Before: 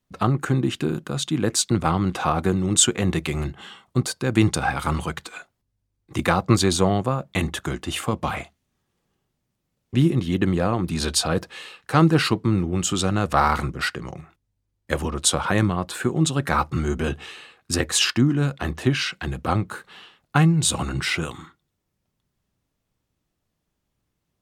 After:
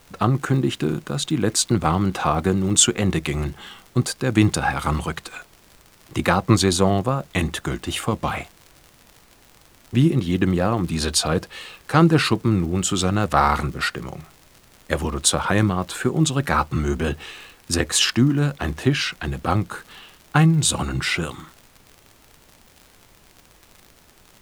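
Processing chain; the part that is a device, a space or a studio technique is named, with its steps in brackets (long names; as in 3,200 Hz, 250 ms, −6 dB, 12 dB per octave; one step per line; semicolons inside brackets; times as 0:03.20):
vinyl LP (tape wow and flutter; surface crackle 77 per second −34 dBFS; pink noise bed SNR 31 dB)
level +1.5 dB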